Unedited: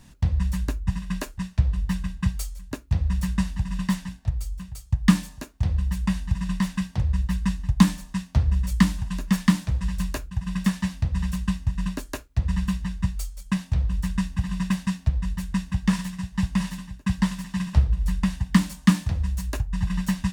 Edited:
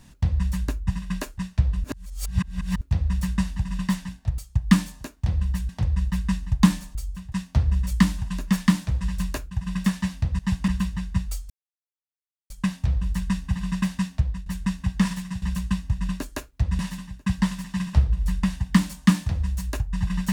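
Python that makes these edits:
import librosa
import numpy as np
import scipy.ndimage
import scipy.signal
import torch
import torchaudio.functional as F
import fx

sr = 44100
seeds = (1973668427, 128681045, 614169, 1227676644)

y = fx.edit(x, sr, fx.reverse_span(start_s=1.84, length_s=0.97),
    fx.move(start_s=4.38, length_s=0.37, to_s=8.12),
    fx.cut(start_s=6.06, length_s=0.8),
    fx.swap(start_s=11.19, length_s=1.37, other_s=16.3, other_length_s=0.29),
    fx.insert_silence(at_s=13.38, length_s=1.0),
    fx.fade_out_to(start_s=15.04, length_s=0.3, curve='qsin', floor_db=-16.0), tone=tone)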